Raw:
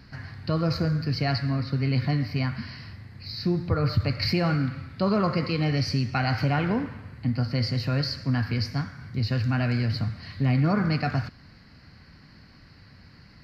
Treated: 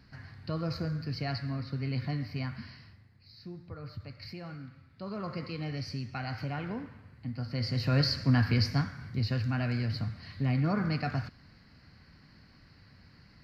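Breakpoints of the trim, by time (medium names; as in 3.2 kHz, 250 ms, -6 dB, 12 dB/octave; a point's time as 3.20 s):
2.66 s -8.5 dB
3.21 s -19 dB
4.86 s -19 dB
5.37 s -11.5 dB
7.34 s -11.5 dB
8.01 s +0.5 dB
8.69 s +0.5 dB
9.48 s -6 dB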